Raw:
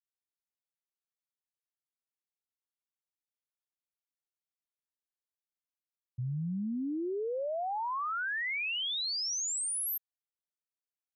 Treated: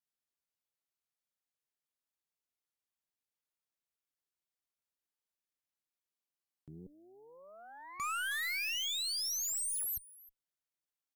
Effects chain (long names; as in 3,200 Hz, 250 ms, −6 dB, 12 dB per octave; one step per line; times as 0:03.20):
0:06.55–0:08.00: first difference
slap from a distant wall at 54 metres, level −17 dB
harmonic generator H 2 −8 dB, 8 −10 dB, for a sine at −29.5 dBFS
in parallel at −8 dB: wave folding −38.5 dBFS
on the sum: buffer that repeats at 0:06.12, samples 2,048, times 11
level −3 dB